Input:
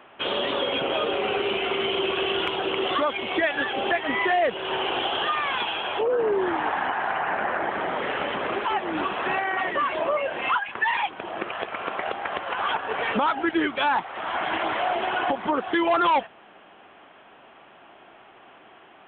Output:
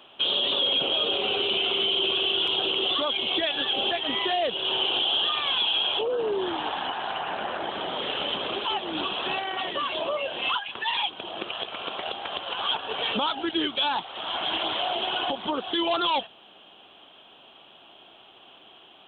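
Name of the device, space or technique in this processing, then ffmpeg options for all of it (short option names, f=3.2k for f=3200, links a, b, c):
over-bright horn tweeter: -af "highshelf=f=2.6k:t=q:w=3:g=9,alimiter=limit=-13dB:level=0:latency=1:release=19,volume=-3.5dB"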